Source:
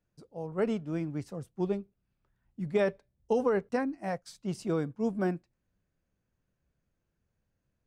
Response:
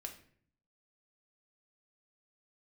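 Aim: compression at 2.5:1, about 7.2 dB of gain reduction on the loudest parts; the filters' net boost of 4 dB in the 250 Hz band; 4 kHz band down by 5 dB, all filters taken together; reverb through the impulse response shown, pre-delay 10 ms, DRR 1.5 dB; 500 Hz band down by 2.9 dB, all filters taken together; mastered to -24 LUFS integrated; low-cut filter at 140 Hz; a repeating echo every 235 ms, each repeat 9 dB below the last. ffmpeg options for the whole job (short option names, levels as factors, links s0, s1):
-filter_complex "[0:a]highpass=140,equalizer=f=250:t=o:g=7.5,equalizer=f=500:t=o:g=-6,equalizer=f=4000:t=o:g=-7,acompressor=threshold=0.02:ratio=2.5,aecho=1:1:235|470|705|940:0.355|0.124|0.0435|0.0152,asplit=2[s0][s1];[1:a]atrim=start_sample=2205,adelay=10[s2];[s1][s2]afir=irnorm=-1:irlink=0,volume=1.26[s3];[s0][s3]amix=inputs=2:normalize=0,volume=3.35"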